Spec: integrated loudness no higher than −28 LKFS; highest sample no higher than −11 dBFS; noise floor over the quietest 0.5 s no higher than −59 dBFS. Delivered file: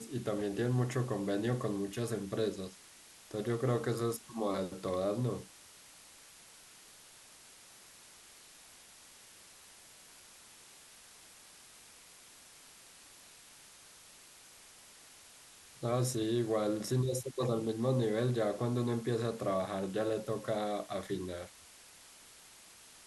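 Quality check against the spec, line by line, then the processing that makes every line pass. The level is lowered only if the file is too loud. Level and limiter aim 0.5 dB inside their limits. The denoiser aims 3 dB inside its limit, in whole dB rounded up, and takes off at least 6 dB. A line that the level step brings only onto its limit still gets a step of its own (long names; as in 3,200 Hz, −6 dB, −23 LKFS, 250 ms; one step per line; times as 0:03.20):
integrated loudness −35.0 LKFS: in spec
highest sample −20.0 dBFS: in spec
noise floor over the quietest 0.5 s −57 dBFS: out of spec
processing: broadband denoise 6 dB, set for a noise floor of −57 dBFS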